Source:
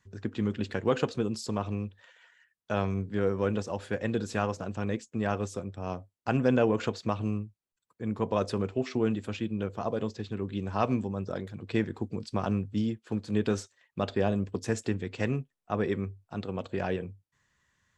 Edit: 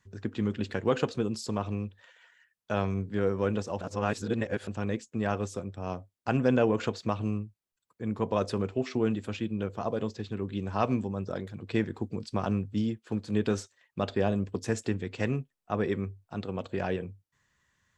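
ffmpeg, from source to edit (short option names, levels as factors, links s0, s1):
-filter_complex "[0:a]asplit=3[s0][s1][s2];[s0]atrim=end=3.812[s3];[s1]atrim=start=3.808:end=4.672,asetpts=PTS-STARTPTS,areverse[s4];[s2]atrim=start=4.668[s5];[s3][s4]acrossfade=d=0.004:c1=hsin:c2=hsin[s6];[s6][s5]acrossfade=d=0.004:c1=hsin:c2=hsin"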